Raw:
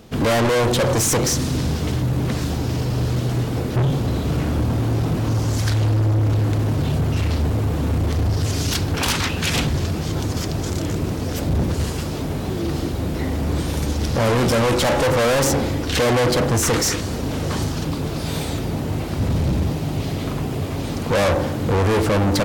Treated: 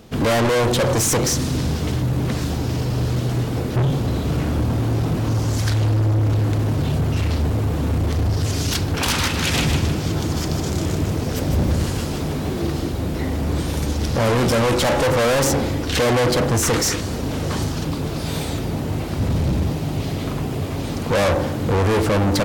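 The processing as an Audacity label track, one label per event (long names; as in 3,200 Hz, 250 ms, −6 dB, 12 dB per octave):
8.970000	12.720000	feedback echo at a low word length 154 ms, feedback 35%, word length 9 bits, level −5 dB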